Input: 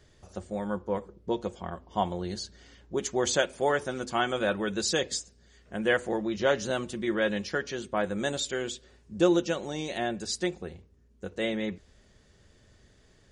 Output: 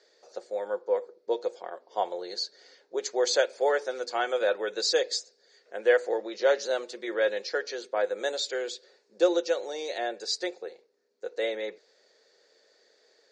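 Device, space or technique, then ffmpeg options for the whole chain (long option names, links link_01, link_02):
phone speaker on a table: -af "highpass=frequency=420:width=0.5412,highpass=frequency=420:width=1.3066,equalizer=frequency=480:width_type=q:width=4:gain=8,equalizer=frequency=1100:width_type=q:width=4:gain=-6,equalizer=frequency=3000:width_type=q:width=4:gain=-8,equalizer=frequency=4400:width_type=q:width=4:gain=9,lowpass=frequency=6800:width=0.5412,lowpass=frequency=6800:width=1.3066"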